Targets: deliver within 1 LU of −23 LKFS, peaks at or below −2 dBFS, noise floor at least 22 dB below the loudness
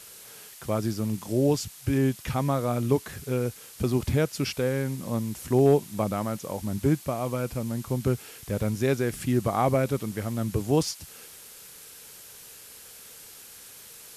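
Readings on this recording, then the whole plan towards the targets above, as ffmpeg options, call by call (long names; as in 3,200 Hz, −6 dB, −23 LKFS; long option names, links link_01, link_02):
background noise floor −47 dBFS; target noise floor −49 dBFS; integrated loudness −27.0 LKFS; sample peak −11.0 dBFS; target loudness −23.0 LKFS
→ -af "afftdn=noise_reduction=6:noise_floor=-47"
-af "volume=4dB"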